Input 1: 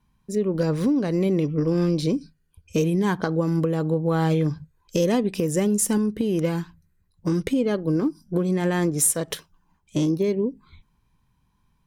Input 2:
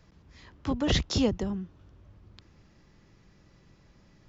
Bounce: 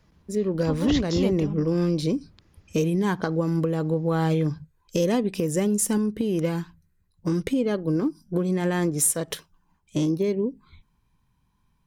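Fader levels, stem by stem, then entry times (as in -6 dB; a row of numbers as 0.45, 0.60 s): -1.5, -2.5 dB; 0.00, 0.00 s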